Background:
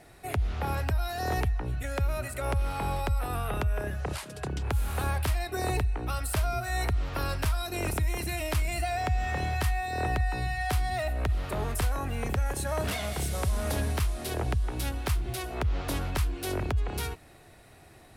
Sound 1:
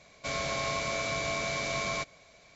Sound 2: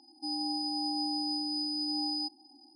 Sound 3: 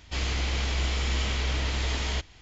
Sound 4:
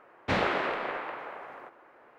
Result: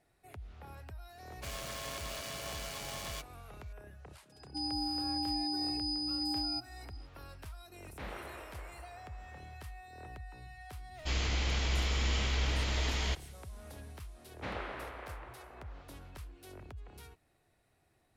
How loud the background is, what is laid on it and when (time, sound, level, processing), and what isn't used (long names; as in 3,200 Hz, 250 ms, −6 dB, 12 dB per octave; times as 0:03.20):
background −19.5 dB
0:01.18: mix in 1 −8 dB + phase distortion by the signal itself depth 0.32 ms
0:04.32: mix in 2 −2 dB
0:07.70: mix in 4 −18 dB
0:10.94: mix in 3 −4 dB, fades 0.05 s
0:14.14: mix in 4 −13.5 dB